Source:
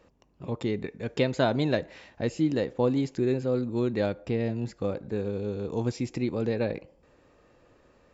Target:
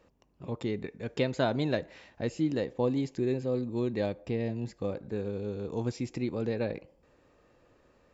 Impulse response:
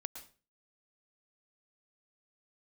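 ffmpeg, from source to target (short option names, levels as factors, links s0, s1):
-filter_complex "[0:a]asettb=1/sr,asplit=3[s0][s1][s2];[s0]atrim=end=2.624[s3];[s1]atrim=start=2.62:end=4.93,asetpts=PTS-STARTPTS,afade=t=in:d=0.004:c=qsin,afade=t=out:st=2.306:d=0.004:c=qsin,bandreject=f=1400:w=5.7[s4];[s2]atrim=start=4.926[s5];[s3][s4]acrossfade=d=0.004:c1=hsin:c2=qsin[s6];[s6][s5]acrossfade=d=0.004:c1=qsin:c2=hsin,volume=0.668"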